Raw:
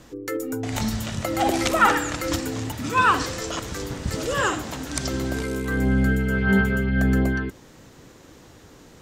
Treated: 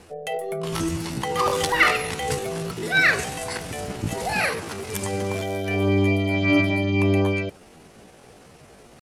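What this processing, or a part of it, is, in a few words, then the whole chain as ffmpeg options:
chipmunk voice: -af "asetrate=66075,aresample=44100,atempo=0.66742,lowpass=11000"

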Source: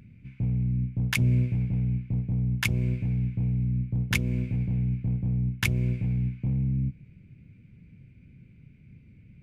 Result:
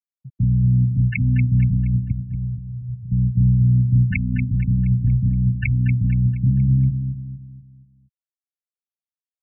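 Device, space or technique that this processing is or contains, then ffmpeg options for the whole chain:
clipper into limiter: -filter_complex "[0:a]asoftclip=type=hard:threshold=-14dB,alimiter=limit=-19.5dB:level=0:latency=1:release=394,asettb=1/sr,asplit=3[link_01][link_02][link_03];[link_01]atrim=end=2.124[link_04];[link_02]atrim=start=2.12:end=3.12,asetpts=PTS-STARTPTS,afade=type=in:duration=0.004:curve=qsin,afade=type=out:start_time=0.996:duration=0.004:curve=qsin,agate=range=-13dB:threshold=-25dB:ratio=16:detection=peak[link_05];[link_03]atrim=start=3.116[link_06];[link_04][link_05]acrossfade=duration=0.004:curve1=hsin:curve2=qsin[link_07];[link_07][link_06]acrossfade=duration=0.004:curve1=qsin:curve2=hsin,afftfilt=real='re*gte(hypot(re,im),0.0891)':imag='im*gte(hypot(re,im),0.0891)':win_size=1024:overlap=0.75,aecho=1:1:236|472|708|944|1180:0.398|0.167|0.0702|0.0295|0.0124,volume=9dB"

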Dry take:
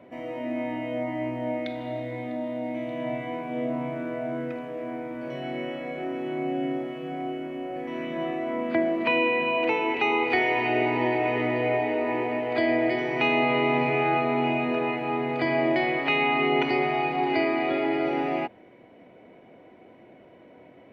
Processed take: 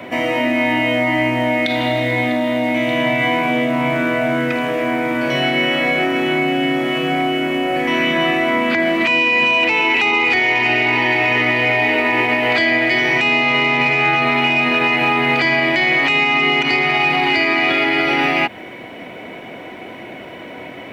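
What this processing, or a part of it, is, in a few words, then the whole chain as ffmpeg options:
mastering chain: -filter_complex "[0:a]equalizer=frequency=510:width_type=o:width=0.77:gain=-3,acrossover=split=260|1100[link_01][link_02][link_03];[link_01]acompressor=threshold=-35dB:ratio=4[link_04];[link_02]acompressor=threshold=-35dB:ratio=4[link_05];[link_03]acompressor=threshold=-32dB:ratio=4[link_06];[link_04][link_05][link_06]amix=inputs=3:normalize=0,acompressor=threshold=-34dB:ratio=2,asoftclip=type=tanh:threshold=-23.5dB,tiltshelf=frequency=1200:gain=-6,alimiter=level_in=29dB:limit=-1dB:release=50:level=0:latency=1,volume=-6.5dB"

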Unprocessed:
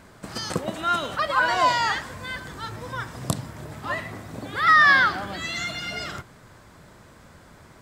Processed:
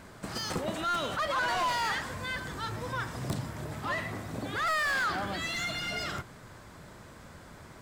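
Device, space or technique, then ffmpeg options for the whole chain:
saturation between pre-emphasis and de-emphasis: -af "highshelf=frequency=2900:gain=10,asoftclip=type=tanh:threshold=-25dB,highshelf=frequency=2900:gain=-10"

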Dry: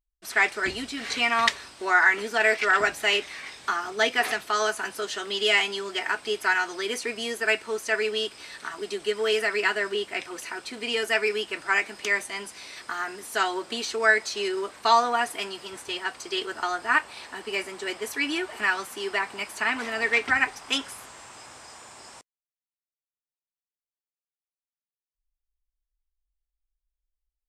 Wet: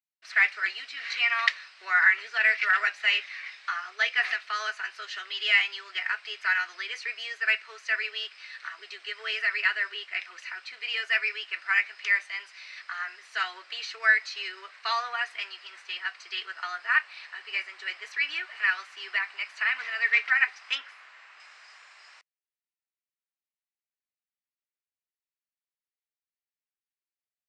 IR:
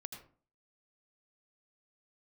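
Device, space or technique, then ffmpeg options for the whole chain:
phone earpiece: -filter_complex "[0:a]highpass=1300,highpass=330,equalizer=frequency=900:width_type=q:width=4:gain=-6,equalizer=frequency=1900:width_type=q:width=4:gain=3,equalizer=frequency=3400:width_type=q:width=4:gain=-9,lowpass=frequency=3700:width=0.5412,lowpass=frequency=3700:width=1.3066,aemphasis=mode=production:type=75fm,asettb=1/sr,asplit=3[link_01][link_02][link_03];[link_01]atrim=end=20.754[link_04];[link_02]atrim=start=20.75:end=21.4,asetpts=PTS-STARTPTS,afade=type=in:duration=0.004:curve=qsin,afade=type=out:start_time=0.646:duration=0.004:curve=qsin,bass=frequency=250:gain=4,treble=frequency=4000:gain=-9[link_05];[link_03]atrim=start=21.396[link_06];[link_04][link_05]acrossfade=duration=0.004:curve1=hsin:curve2=qsin[link_07];[link_07][link_06]acrossfade=duration=0.004:curve1=qsin:curve2=hsin,volume=-1.5dB"

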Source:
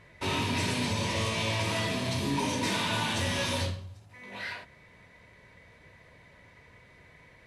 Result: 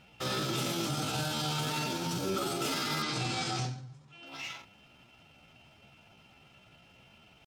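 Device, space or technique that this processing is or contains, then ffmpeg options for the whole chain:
chipmunk voice: -filter_complex "[0:a]asetrate=60591,aresample=44100,atempo=0.727827,asettb=1/sr,asplit=3[link_01][link_02][link_03];[link_01]atrim=end=3.024[link_04];[link_02]atrim=start=3.02:end=4.26,asetpts=PTS-STARTPTS,afade=type=in:duration=0.004:curve=qsin,afade=type=out:start_time=1.236:duration=0.004:curve=qsin,lowpass=frequency=8000:width=0.5412,lowpass=frequency=8000:width=1.3066[link_05];[link_03]atrim=start=4.256[link_06];[link_04][link_05]acrossfade=duration=0.004:curve1=hsin:curve2=qsin[link_07];[link_07][link_06]acrossfade=duration=0.004:curve1=qsin:curve2=hsin,volume=-3dB"

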